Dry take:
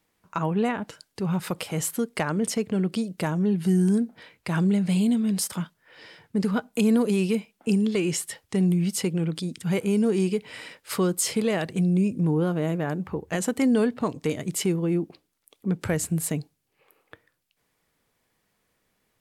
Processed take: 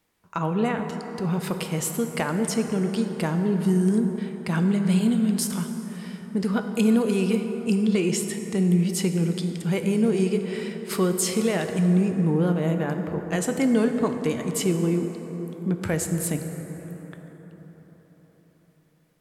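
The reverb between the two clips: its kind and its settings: plate-style reverb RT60 4.8 s, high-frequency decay 0.4×, DRR 5.5 dB

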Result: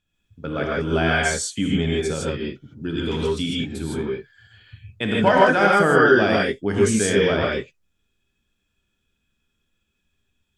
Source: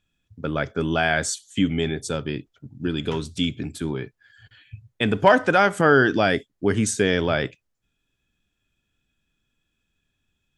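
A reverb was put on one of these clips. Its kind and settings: non-linear reverb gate 0.18 s rising, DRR -4 dB; gain -3.5 dB

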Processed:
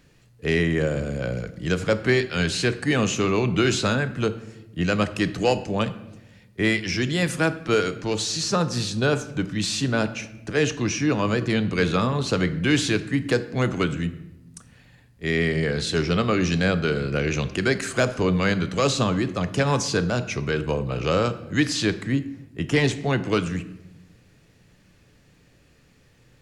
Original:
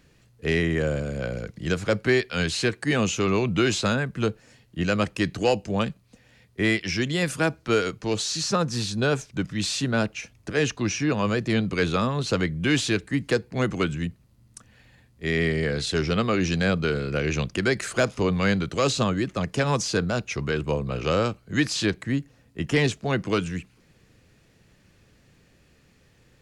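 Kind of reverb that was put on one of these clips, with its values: shoebox room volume 350 m³, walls mixed, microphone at 0.34 m; gain +1 dB

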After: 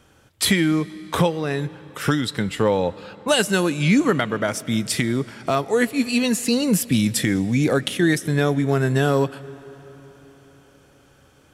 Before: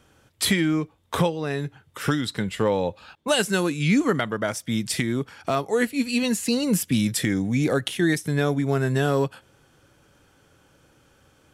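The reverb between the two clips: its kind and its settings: digital reverb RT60 4.5 s, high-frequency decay 0.8×, pre-delay 80 ms, DRR 19 dB; gain +3 dB

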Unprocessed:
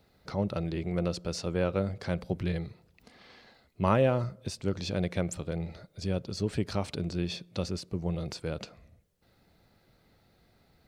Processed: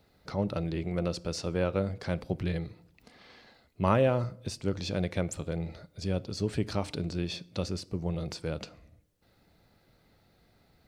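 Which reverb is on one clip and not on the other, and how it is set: FDN reverb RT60 0.54 s, low-frequency decay 1.55×, high-frequency decay 0.9×, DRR 18.5 dB

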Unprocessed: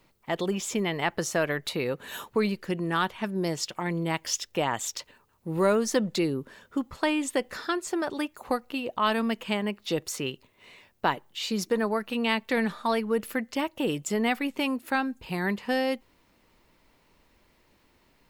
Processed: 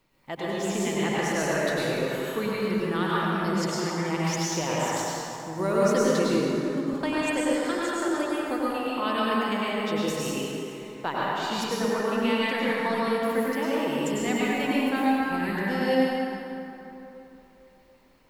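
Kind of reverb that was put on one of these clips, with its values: plate-style reverb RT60 3.2 s, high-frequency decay 0.55×, pre-delay 85 ms, DRR -7.5 dB; gain -6 dB

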